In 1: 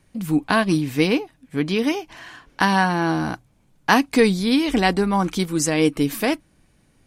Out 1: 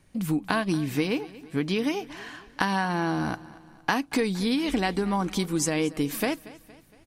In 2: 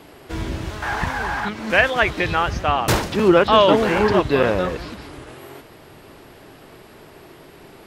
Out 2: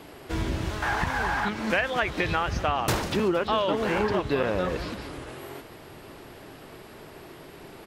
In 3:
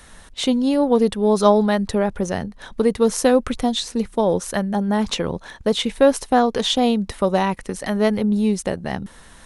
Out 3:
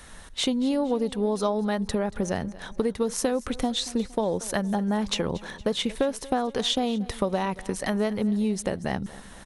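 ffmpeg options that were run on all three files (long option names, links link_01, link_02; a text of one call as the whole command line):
ffmpeg -i in.wav -af "acompressor=threshold=-21dB:ratio=6,aeval=exprs='0.447*(cos(1*acos(clip(val(0)/0.447,-1,1)))-cos(1*PI/2))+0.0178*(cos(3*acos(clip(val(0)/0.447,-1,1)))-cos(3*PI/2))':channel_layout=same,aecho=1:1:232|464|696|928:0.112|0.055|0.0269|0.0132" out.wav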